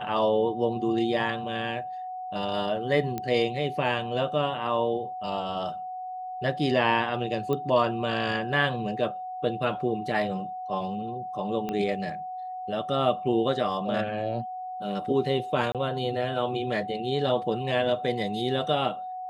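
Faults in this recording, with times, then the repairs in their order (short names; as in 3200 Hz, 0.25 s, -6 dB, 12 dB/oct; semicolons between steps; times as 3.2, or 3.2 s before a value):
tone 740 Hz -33 dBFS
3.18 pop -17 dBFS
7.53 pop -18 dBFS
11.69 pop -18 dBFS
15.72–15.75 gap 27 ms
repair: de-click; notch 740 Hz, Q 30; interpolate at 15.72, 27 ms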